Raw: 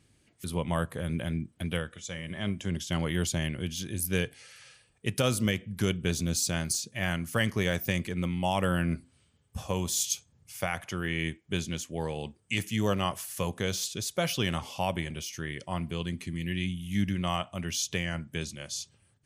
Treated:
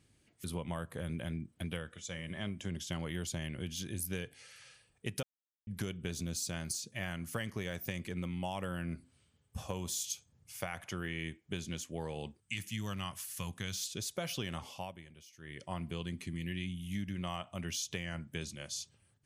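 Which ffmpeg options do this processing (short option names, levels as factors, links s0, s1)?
-filter_complex "[0:a]asettb=1/sr,asplit=3[s0][s1][s2];[s0]atrim=end=12.404[s3];[s1]atrim=start=12.4:end=13.91,asetpts=PTS-STARTPTS,afade=t=in:d=0.004:c=qsin,afade=t=out:st=1.506:d=0.004:c=qsin,equalizer=f=490:t=o:w=1.6:g=-13[s4];[s2]atrim=start=13.906[s5];[s3][s4]acrossfade=d=0.004:c1=hsin:c2=qsin[s6];[s6][s5]acrossfade=d=0.004:c1=qsin:c2=hsin,asplit=5[s7][s8][s9][s10][s11];[s7]atrim=end=5.23,asetpts=PTS-STARTPTS,afade=t=out:st=5.226:d=0.004:c=hsin[s12];[s8]atrim=start=5.23:end=5.67,asetpts=PTS-STARTPTS,volume=0[s13];[s9]atrim=start=5.67:end=14.93,asetpts=PTS-STARTPTS,afade=t=in:d=0.004:c=hsin,afade=t=out:st=8.93:d=0.33:silence=0.16788[s14];[s10]atrim=start=14.93:end=15.39,asetpts=PTS-STARTPTS,volume=0.168[s15];[s11]atrim=start=15.39,asetpts=PTS-STARTPTS,afade=t=in:d=0.33:silence=0.16788[s16];[s12][s13][s14][s15][s16]concat=n=5:v=0:a=1,acompressor=threshold=0.0316:ratio=6,volume=0.631"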